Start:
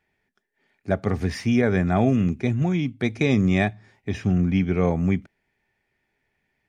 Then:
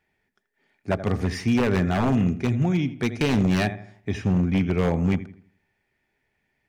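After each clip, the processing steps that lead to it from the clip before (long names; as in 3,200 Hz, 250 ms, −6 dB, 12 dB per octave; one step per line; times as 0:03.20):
feedback echo with a low-pass in the loop 82 ms, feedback 38%, low-pass 3,000 Hz, level −13.5 dB
wave folding −14 dBFS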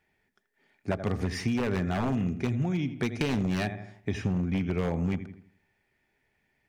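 downward compressor, threshold −25 dBFS, peak gain reduction 7.5 dB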